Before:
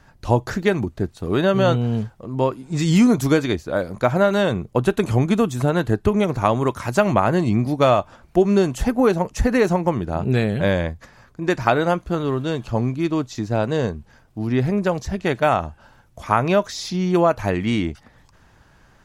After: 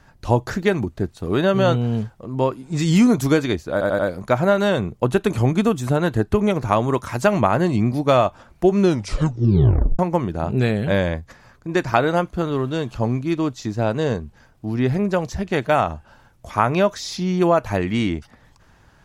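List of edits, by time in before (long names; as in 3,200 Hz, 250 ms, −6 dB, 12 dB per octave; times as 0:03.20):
0:03.72: stutter 0.09 s, 4 plays
0:08.52: tape stop 1.20 s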